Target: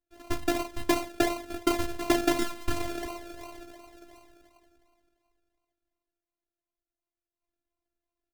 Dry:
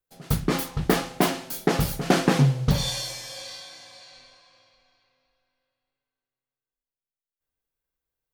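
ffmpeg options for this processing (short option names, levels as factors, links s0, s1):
-af "aecho=1:1:4.7:0.43,acrusher=samples=35:mix=1:aa=0.000001:lfo=1:lforange=21:lforate=2.8,afftfilt=real='hypot(re,im)*cos(PI*b)':imag='0':win_size=512:overlap=0.75"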